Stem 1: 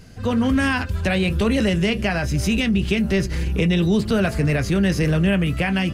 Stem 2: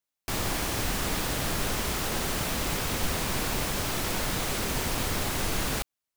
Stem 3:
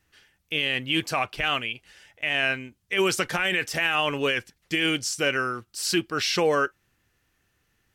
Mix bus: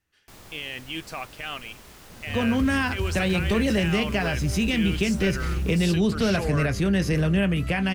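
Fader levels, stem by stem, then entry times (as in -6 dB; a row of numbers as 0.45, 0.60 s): -3.5, -18.0, -9.0 dB; 2.10, 0.00, 0.00 s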